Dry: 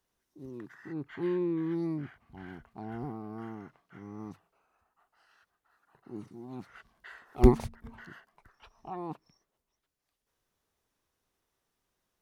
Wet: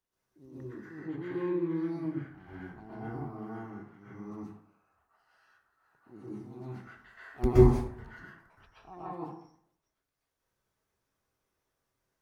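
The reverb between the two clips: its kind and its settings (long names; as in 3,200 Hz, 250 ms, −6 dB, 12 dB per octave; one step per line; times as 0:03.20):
dense smooth reverb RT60 0.64 s, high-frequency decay 0.5×, pre-delay 110 ms, DRR −9 dB
level −9.5 dB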